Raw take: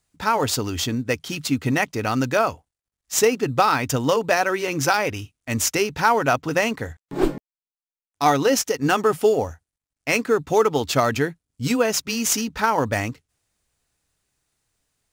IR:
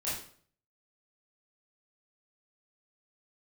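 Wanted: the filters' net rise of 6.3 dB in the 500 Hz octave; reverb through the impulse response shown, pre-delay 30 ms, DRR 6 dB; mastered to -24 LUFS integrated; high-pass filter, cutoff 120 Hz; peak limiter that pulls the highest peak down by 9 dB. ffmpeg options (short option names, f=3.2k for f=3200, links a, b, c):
-filter_complex "[0:a]highpass=120,equalizer=f=500:t=o:g=7.5,alimiter=limit=-9.5dB:level=0:latency=1,asplit=2[a][b];[1:a]atrim=start_sample=2205,adelay=30[c];[b][c]afir=irnorm=-1:irlink=0,volume=-10.5dB[d];[a][d]amix=inputs=2:normalize=0,volume=-3.5dB"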